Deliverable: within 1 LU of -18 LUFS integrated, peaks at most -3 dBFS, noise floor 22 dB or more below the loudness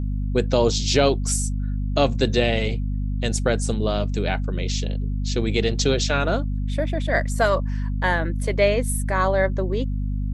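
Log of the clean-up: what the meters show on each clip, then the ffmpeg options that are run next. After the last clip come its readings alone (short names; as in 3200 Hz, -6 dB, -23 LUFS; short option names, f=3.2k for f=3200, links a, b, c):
hum 50 Hz; harmonics up to 250 Hz; hum level -22 dBFS; loudness -22.5 LUFS; peak -4.5 dBFS; loudness target -18.0 LUFS
-> -af "bandreject=f=50:t=h:w=4,bandreject=f=100:t=h:w=4,bandreject=f=150:t=h:w=4,bandreject=f=200:t=h:w=4,bandreject=f=250:t=h:w=4"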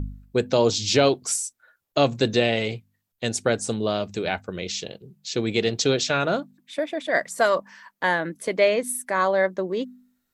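hum none; loudness -24.0 LUFS; peak -5.0 dBFS; loudness target -18.0 LUFS
-> -af "volume=6dB,alimiter=limit=-3dB:level=0:latency=1"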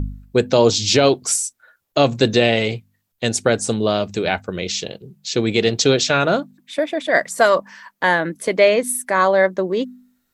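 loudness -18.5 LUFS; peak -3.0 dBFS; noise floor -71 dBFS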